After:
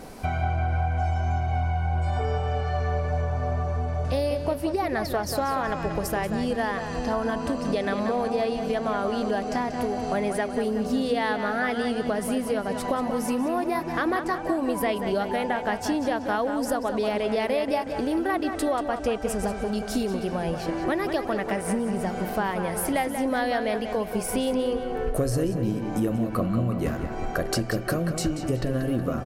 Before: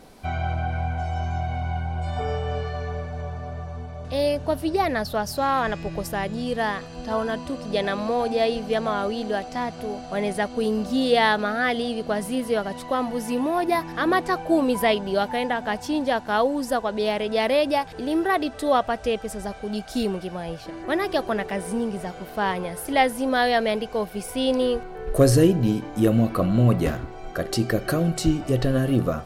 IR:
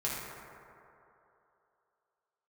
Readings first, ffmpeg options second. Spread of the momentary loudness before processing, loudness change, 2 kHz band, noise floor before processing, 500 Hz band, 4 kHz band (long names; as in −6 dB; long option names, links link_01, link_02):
10 LU, −2.5 dB, −3.0 dB, −39 dBFS, −2.5 dB, −5.5 dB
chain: -filter_complex "[0:a]equalizer=frequency=3600:width=2.3:gain=-5.5,acompressor=threshold=-31dB:ratio=6,asplit=2[link_01][link_02];[link_02]adelay=185,lowpass=frequency=4400:poles=1,volume=-7.5dB,asplit=2[link_03][link_04];[link_04]adelay=185,lowpass=frequency=4400:poles=1,volume=0.53,asplit=2[link_05][link_06];[link_06]adelay=185,lowpass=frequency=4400:poles=1,volume=0.53,asplit=2[link_07][link_08];[link_08]adelay=185,lowpass=frequency=4400:poles=1,volume=0.53,asplit=2[link_09][link_10];[link_10]adelay=185,lowpass=frequency=4400:poles=1,volume=0.53,asplit=2[link_11][link_12];[link_12]adelay=185,lowpass=frequency=4400:poles=1,volume=0.53[link_13];[link_01][link_03][link_05][link_07][link_09][link_11][link_13]amix=inputs=7:normalize=0,volume=7dB"